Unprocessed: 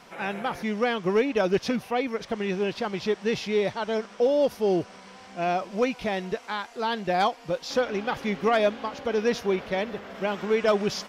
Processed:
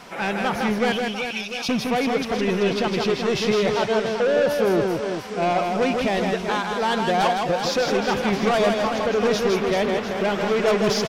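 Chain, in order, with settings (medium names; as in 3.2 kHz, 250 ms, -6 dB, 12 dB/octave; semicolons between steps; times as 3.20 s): 0.92–1.69 s: Chebyshev high-pass 2.3 kHz, order 8; saturation -25.5 dBFS, distortion -9 dB; on a send: reverse bouncing-ball echo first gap 160 ms, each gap 1.4×, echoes 5; on the sum: trim +8 dB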